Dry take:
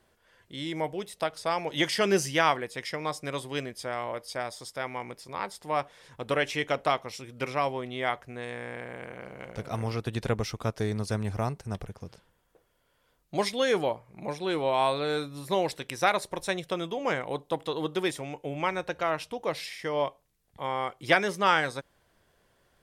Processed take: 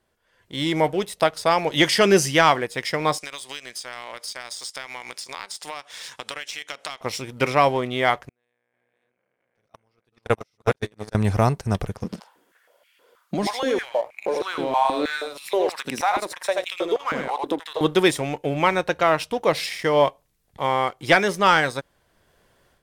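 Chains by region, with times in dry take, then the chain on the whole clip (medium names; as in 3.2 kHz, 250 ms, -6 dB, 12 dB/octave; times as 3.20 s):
3.18–7.01 s: frequency weighting ITU-R 468 + compression 8:1, threshold -41 dBFS
8.29–11.15 s: chunks repeated in reverse 443 ms, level -1 dB + bass shelf 260 Hz -9 dB + gate -29 dBFS, range -41 dB
12.04–17.81 s: delay 83 ms -5.5 dB + compression 3:1, threshold -40 dBFS + step-sequenced high-pass 6.3 Hz 210–2400 Hz
whole clip: waveshaping leveller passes 1; level rider gain up to 11.5 dB; trim -3 dB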